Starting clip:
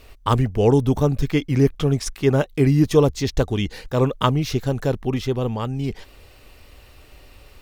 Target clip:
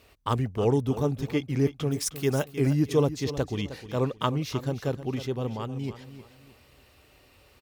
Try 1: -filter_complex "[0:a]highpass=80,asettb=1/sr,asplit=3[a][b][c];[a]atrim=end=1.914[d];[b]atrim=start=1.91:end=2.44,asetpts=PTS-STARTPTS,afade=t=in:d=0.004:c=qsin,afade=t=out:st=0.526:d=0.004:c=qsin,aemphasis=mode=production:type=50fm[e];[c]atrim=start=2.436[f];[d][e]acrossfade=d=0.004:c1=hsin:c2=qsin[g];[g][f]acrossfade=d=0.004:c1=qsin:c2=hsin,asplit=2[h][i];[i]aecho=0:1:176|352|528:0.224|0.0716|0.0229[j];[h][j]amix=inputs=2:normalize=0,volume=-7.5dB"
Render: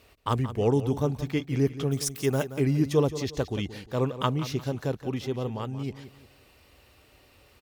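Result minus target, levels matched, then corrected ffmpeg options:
echo 0.135 s early
-filter_complex "[0:a]highpass=80,asettb=1/sr,asplit=3[a][b][c];[a]atrim=end=1.914[d];[b]atrim=start=1.91:end=2.44,asetpts=PTS-STARTPTS,afade=t=in:d=0.004:c=qsin,afade=t=out:st=0.526:d=0.004:c=qsin,aemphasis=mode=production:type=50fm[e];[c]atrim=start=2.436[f];[d][e]acrossfade=d=0.004:c1=hsin:c2=qsin[g];[g][f]acrossfade=d=0.004:c1=qsin:c2=hsin,asplit=2[h][i];[i]aecho=0:1:311|622|933:0.224|0.0716|0.0229[j];[h][j]amix=inputs=2:normalize=0,volume=-7.5dB"

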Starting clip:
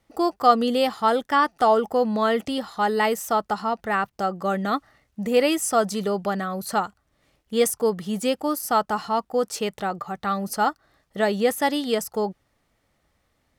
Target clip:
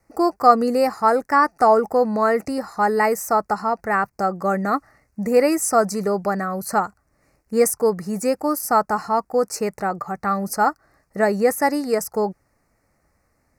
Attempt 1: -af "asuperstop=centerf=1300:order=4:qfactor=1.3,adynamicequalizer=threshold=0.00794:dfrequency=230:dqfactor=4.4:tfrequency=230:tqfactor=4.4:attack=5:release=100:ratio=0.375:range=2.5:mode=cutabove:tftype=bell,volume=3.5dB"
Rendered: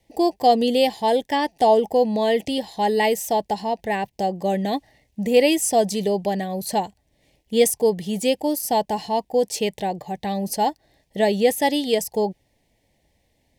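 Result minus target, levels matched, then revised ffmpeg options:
4000 Hz band +11.0 dB
-af "asuperstop=centerf=3300:order=4:qfactor=1.3,adynamicequalizer=threshold=0.00794:dfrequency=230:dqfactor=4.4:tfrequency=230:tqfactor=4.4:attack=5:release=100:ratio=0.375:range=2.5:mode=cutabove:tftype=bell,volume=3.5dB"

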